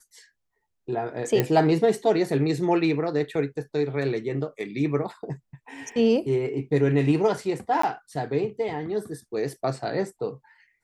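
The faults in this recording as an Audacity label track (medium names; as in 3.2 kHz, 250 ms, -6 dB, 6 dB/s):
1.400000	1.400000	pop -8 dBFS
5.920000	5.920000	dropout 2.3 ms
7.820000	7.830000	dropout 14 ms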